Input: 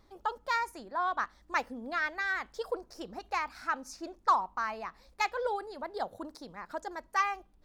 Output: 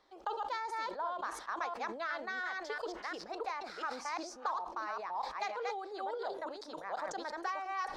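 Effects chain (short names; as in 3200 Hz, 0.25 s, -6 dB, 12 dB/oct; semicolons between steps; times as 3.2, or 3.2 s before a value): reverse delay 0.334 s, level -1.5 dB; dynamic EQ 2000 Hz, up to -5 dB, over -39 dBFS, Q 0.72; compressor 6:1, threshold -34 dBFS, peak gain reduction 11.5 dB; three-band isolator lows -22 dB, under 370 Hz, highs -18 dB, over 7400 Hz; on a send at -21 dB: reverb RT60 0.40 s, pre-delay 3 ms; on the sum: speed mistake 25 fps video run at 24 fps; sustainer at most 73 dB/s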